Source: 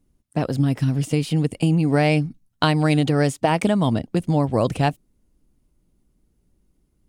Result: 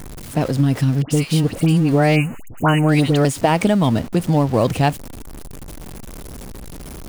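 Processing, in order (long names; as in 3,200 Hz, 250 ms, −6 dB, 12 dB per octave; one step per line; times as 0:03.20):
converter with a step at zero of −30 dBFS
0:02.08–0:02.82: time-frequency box erased 3,000–6,300 Hz
0:01.02–0:03.25: all-pass dispersion highs, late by 85 ms, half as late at 1,500 Hz
level +2.5 dB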